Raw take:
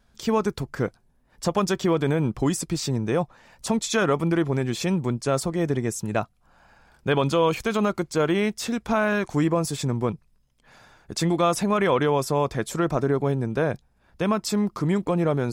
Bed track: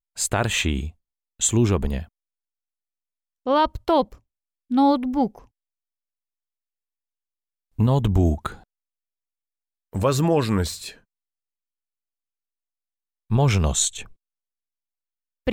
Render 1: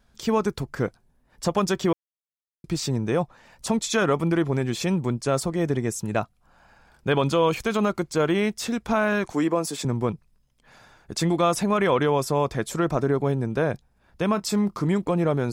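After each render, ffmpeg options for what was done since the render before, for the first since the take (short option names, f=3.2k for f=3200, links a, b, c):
-filter_complex "[0:a]asettb=1/sr,asplit=3[a][b][c];[a]atrim=end=9.324[d];[b]atrim=start=9.32:end=9.85,asetpts=PTS-STARTPTS,afade=t=in:d=0.004:c=qsin,afade=t=out:st=0.526:d=0.004:c=qsin,highpass=f=200:w=0.5412,highpass=f=200:w=1.3066[e];[c]atrim=start=9.846[f];[d][e]acrossfade=d=0.004:c1=hsin:c2=qsin[g];[g][f]acrossfade=d=0.004:c1=qsin:c2=hsin,asettb=1/sr,asplit=3[h][i][j];[h]atrim=end=14.324[k];[i]atrim=start=14.32:end=14.89,asetpts=PTS-STARTPTS,afade=t=in:d=0.004:c=qsin,afade=t=out:st=0.566:d=0.004:c=qsin,asplit=2[l][m];[m]adelay=25,volume=-14dB[n];[l][n]amix=inputs=2:normalize=0,atrim=end_sample=25137[o];[j]atrim=start=14.886[p];[k][o]acrossfade=d=0.004:c1=hsin:c2=qsin[q];[q][p]acrossfade=d=0.004:c1=qsin:c2=hsin,asplit=3[r][s][t];[r]atrim=end=1.93,asetpts=PTS-STARTPTS,afade=t=out:st=1.926:d=0.004:c=hsin[u];[s]atrim=start=1.93:end=2.64,asetpts=PTS-STARTPTS,volume=0[v];[t]atrim=start=2.64,asetpts=PTS-STARTPTS,afade=t=in:d=0.004:c=hsin[w];[u][v][w]concat=n=3:v=0:a=1"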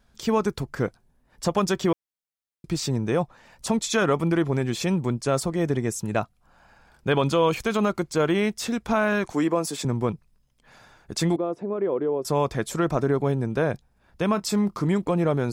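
-filter_complex "[0:a]asettb=1/sr,asplit=3[a][b][c];[a]atrim=end=11.364[d];[b]atrim=start=11.36:end=12.25,asetpts=PTS-STARTPTS,afade=t=in:d=0.004:c=qsin,afade=t=out:st=0.886:d=0.004:c=qsin,bandpass=f=380:t=q:w=2.1[e];[c]atrim=start=12.246[f];[d][e]acrossfade=d=0.004:c1=hsin:c2=qsin[g];[g][f]acrossfade=d=0.004:c1=qsin:c2=hsin"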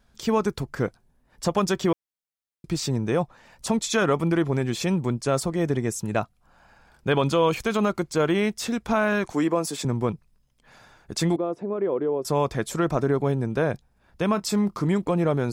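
-af anull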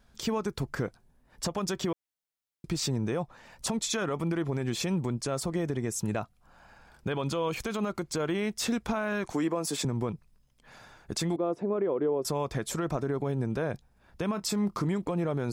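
-af "acompressor=threshold=-23dB:ratio=6,alimiter=limit=-20dB:level=0:latency=1:release=102"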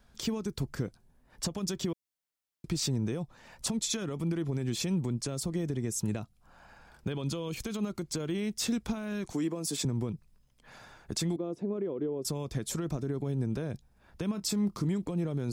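-filter_complex "[0:a]acrossover=split=370|3000[a][b][c];[b]acompressor=threshold=-46dB:ratio=4[d];[a][d][c]amix=inputs=3:normalize=0"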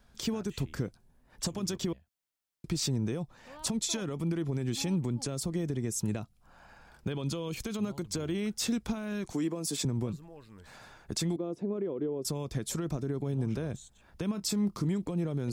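-filter_complex "[1:a]volume=-31dB[a];[0:a][a]amix=inputs=2:normalize=0"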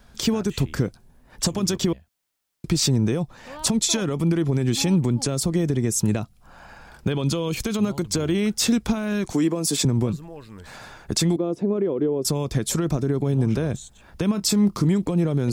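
-af "volume=10.5dB"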